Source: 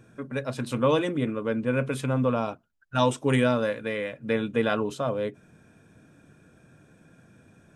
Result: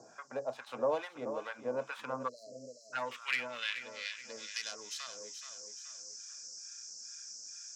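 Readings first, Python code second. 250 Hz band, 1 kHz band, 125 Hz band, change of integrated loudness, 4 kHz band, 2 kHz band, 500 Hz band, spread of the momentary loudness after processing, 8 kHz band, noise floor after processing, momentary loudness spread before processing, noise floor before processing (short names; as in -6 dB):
-22.5 dB, -10.0 dB, -29.0 dB, -12.5 dB, -3.0 dB, -6.5 dB, -12.5 dB, 10 LU, +3.0 dB, -56 dBFS, 9 LU, -59 dBFS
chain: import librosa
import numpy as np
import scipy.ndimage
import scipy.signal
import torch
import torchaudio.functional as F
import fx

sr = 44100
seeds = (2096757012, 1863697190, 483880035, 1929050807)

y = fx.tracing_dist(x, sr, depth_ms=0.21)
y = fx.tilt_shelf(y, sr, db=-4.5, hz=920.0)
y = fx.harmonic_tremolo(y, sr, hz=2.3, depth_pct=100, crossover_hz=950.0)
y = fx.dmg_noise_band(y, sr, seeds[0], low_hz=5000.0, high_hz=7600.0, level_db=-54.0)
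y = fx.filter_sweep_bandpass(y, sr, from_hz=760.0, to_hz=5600.0, start_s=1.66, end_s=4.59, q=3.0)
y = fx.echo_feedback(y, sr, ms=427, feedback_pct=31, wet_db=-12)
y = fx.spec_erase(y, sr, start_s=2.28, length_s=0.65, low_hz=680.0, high_hz=4000.0)
y = fx.band_squash(y, sr, depth_pct=40)
y = F.gain(torch.from_numpy(y), 6.5).numpy()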